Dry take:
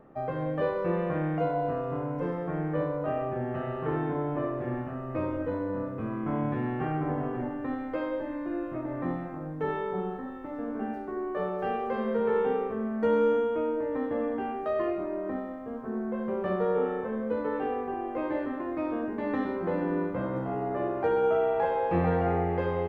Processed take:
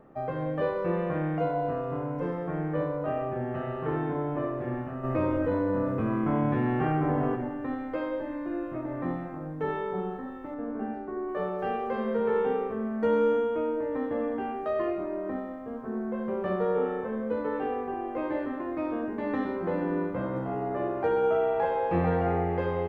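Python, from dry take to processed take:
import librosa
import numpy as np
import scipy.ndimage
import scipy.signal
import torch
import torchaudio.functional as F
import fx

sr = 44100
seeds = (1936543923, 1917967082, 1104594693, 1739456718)

y = fx.env_flatten(x, sr, amount_pct=50, at=(5.03, 7.34), fade=0.02)
y = fx.lowpass(y, sr, hz=1900.0, slope=6, at=(10.54, 11.29))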